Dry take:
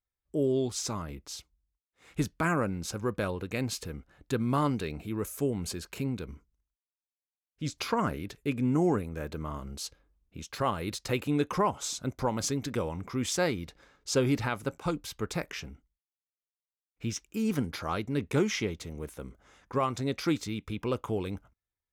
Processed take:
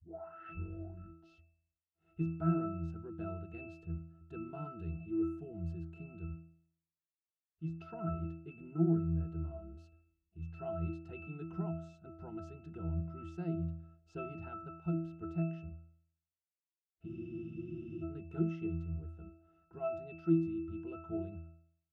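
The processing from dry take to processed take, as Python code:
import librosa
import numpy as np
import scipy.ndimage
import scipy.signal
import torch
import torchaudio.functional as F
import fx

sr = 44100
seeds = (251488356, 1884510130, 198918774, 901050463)

y = fx.tape_start_head(x, sr, length_s=1.58)
y = fx.octave_resonator(y, sr, note='E', decay_s=0.62)
y = fx.spec_freeze(y, sr, seeds[0], at_s=17.09, hold_s=0.95)
y = y * 10.0 ** (9.5 / 20.0)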